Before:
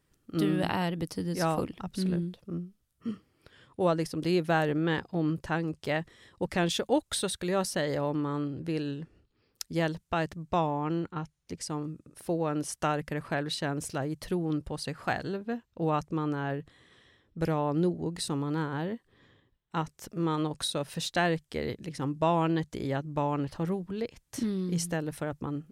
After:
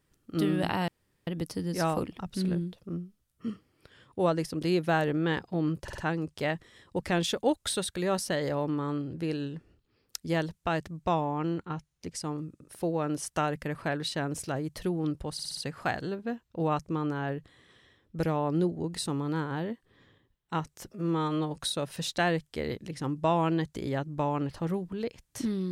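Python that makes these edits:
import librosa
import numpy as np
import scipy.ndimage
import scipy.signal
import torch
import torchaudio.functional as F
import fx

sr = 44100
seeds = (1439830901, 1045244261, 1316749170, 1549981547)

y = fx.edit(x, sr, fx.insert_room_tone(at_s=0.88, length_s=0.39),
    fx.stutter(start_s=5.44, slice_s=0.05, count=4),
    fx.stutter(start_s=14.79, slice_s=0.06, count=5),
    fx.stretch_span(start_s=20.07, length_s=0.48, factor=1.5), tone=tone)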